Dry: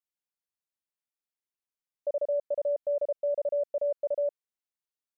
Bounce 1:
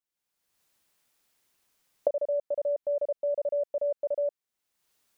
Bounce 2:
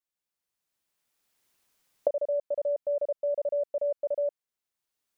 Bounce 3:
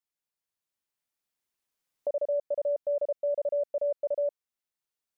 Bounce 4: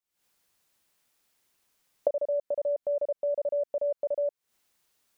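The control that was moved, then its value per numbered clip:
camcorder AGC, rising by: 34, 14, 5, 86 dB per second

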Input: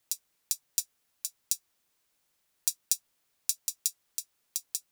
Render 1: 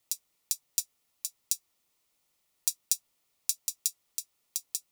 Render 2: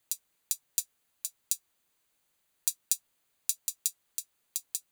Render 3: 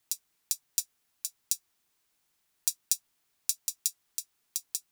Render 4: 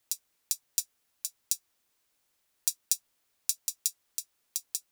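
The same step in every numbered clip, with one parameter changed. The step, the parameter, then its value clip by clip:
notch filter, centre frequency: 1,600, 5,400, 540, 160 Hertz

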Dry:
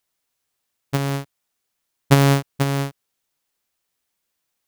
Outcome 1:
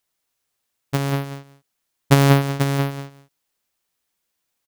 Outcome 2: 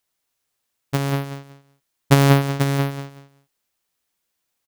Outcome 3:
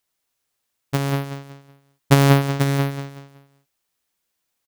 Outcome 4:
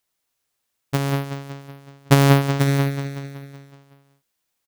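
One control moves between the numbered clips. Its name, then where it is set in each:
repeating echo, feedback: 16, 23, 34, 58%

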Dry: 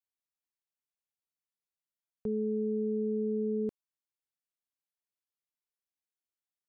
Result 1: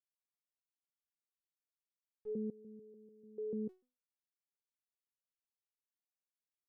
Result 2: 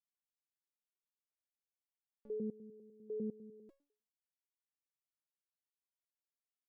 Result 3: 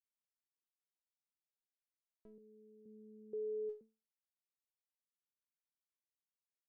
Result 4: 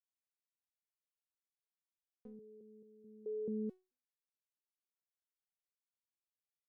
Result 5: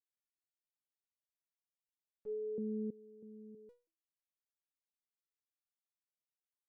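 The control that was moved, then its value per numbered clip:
step-sequenced resonator, speed: 6.8, 10, 2.1, 4.6, 3.1 Hertz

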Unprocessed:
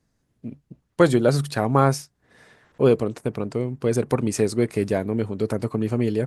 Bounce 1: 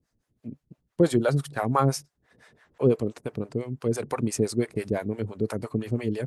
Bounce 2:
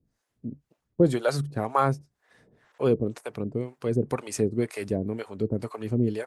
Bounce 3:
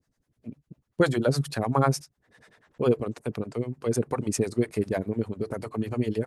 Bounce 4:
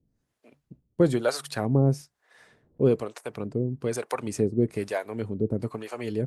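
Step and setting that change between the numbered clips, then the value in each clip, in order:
two-band tremolo in antiphase, speed: 5.9, 2, 10, 1.1 Hertz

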